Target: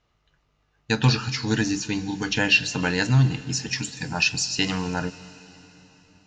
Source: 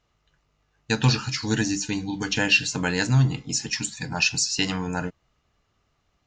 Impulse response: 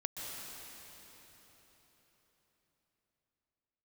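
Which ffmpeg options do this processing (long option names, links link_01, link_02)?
-filter_complex "[0:a]lowpass=5700,asplit=2[link_01][link_02];[1:a]atrim=start_sample=2205,highshelf=frequency=4500:gain=9[link_03];[link_02][link_03]afir=irnorm=-1:irlink=0,volume=-17dB[link_04];[link_01][link_04]amix=inputs=2:normalize=0"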